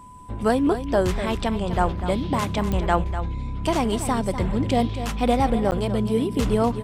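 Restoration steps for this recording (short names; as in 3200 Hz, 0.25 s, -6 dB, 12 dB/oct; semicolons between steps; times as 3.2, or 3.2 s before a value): de-click; notch 1000 Hz, Q 30; interpolate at 5.71, 9 ms; inverse comb 0.247 s -11 dB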